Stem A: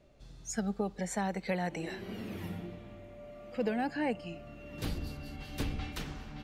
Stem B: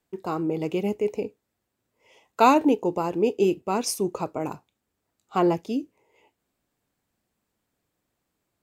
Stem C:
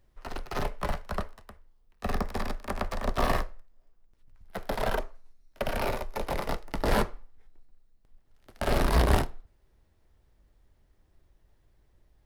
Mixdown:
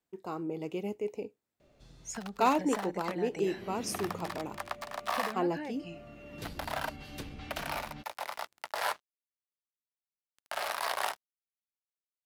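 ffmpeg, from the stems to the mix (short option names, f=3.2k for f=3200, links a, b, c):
-filter_complex "[0:a]acompressor=threshold=-36dB:ratio=10,adelay=1600,volume=0dB[a];[1:a]volume=-9dB[b];[2:a]highpass=f=690:w=0.5412,highpass=f=690:w=1.3066,aeval=exprs='sgn(val(0))*max(abs(val(0))-0.00596,0)':c=same,adelay=1900,volume=-1dB[c];[a][b][c]amix=inputs=3:normalize=0,lowshelf=f=96:g=-7"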